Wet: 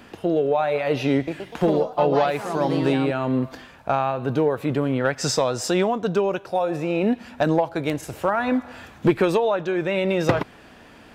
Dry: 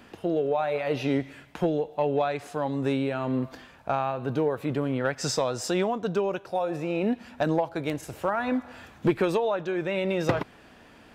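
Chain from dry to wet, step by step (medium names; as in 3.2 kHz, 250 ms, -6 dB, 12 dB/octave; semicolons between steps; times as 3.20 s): 1.15–3.33 s: ever faster or slower copies 124 ms, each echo +3 st, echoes 3, each echo -6 dB; trim +5 dB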